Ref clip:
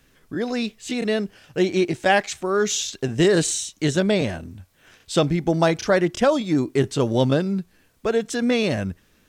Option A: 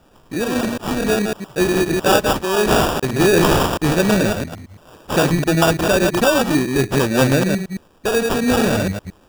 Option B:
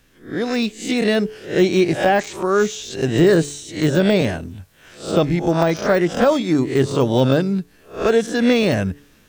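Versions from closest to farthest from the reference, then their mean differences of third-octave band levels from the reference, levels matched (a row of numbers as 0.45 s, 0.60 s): B, A; 4.5 dB, 12.0 dB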